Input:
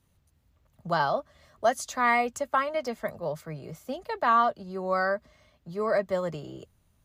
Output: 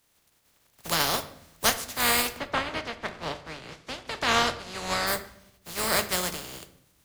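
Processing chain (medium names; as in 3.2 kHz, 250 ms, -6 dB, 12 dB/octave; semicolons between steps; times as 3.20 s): spectral contrast reduction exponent 0.24; 2.35–5.06 s: low-pass 2.5 kHz -> 6.3 kHz 12 dB/octave; simulated room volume 170 m³, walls mixed, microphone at 0.33 m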